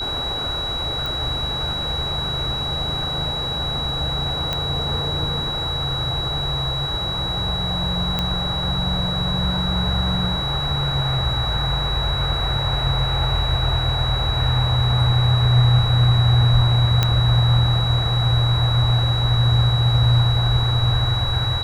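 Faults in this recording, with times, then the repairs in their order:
whistle 3,900 Hz −24 dBFS
0:01.06: click
0:04.53: click −9 dBFS
0:08.19: click −8 dBFS
0:17.03: click −4 dBFS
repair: click removal
notch filter 3,900 Hz, Q 30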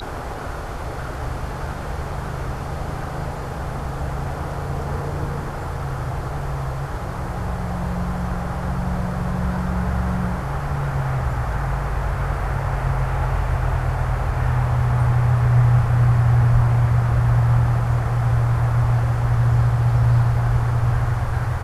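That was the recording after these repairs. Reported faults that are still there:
none of them is left

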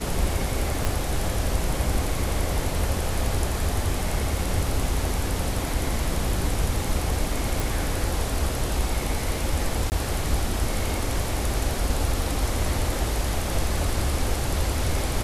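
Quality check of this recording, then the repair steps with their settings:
0:00.85: click −10 dBFS
0:07.60: click
0:09.90–0:09.92: drop-out 19 ms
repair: click removal
repair the gap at 0:09.90, 19 ms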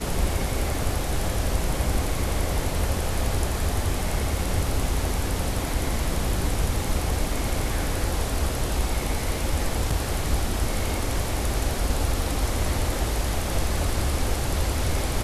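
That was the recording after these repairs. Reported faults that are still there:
0:00.85: click

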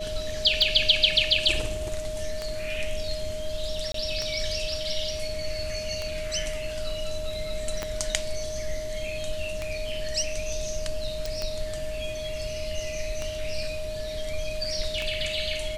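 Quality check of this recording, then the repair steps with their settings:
scratch tick 33 1/3 rpm −15 dBFS
whistle 620 Hz −32 dBFS
0:03.92–0:03.94: drop-out 23 ms
0:07.83: click −14 dBFS
0:11.26: click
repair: click removal
notch filter 620 Hz, Q 30
repair the gap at 0:03.92, 23 ms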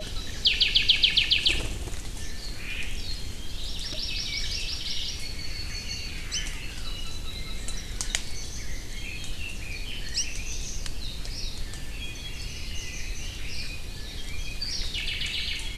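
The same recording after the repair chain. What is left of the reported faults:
0:07.83: click

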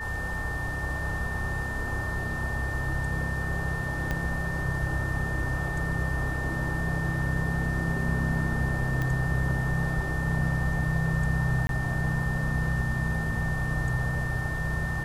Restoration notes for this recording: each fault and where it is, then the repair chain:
whistle 1,800 Hz −33 dBFS
0:04.11: click −16 dBFS
0:09.02: click −18 dBFS
0:11.67–0:11.69: drop-out 22 ms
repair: click removal
notch filter 1,800 Hz, Q 30
repair the gap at 0:11.67, 22 ms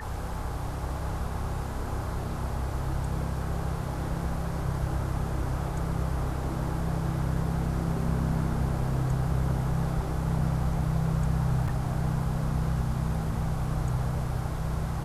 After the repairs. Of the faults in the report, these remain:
0:04.11: click

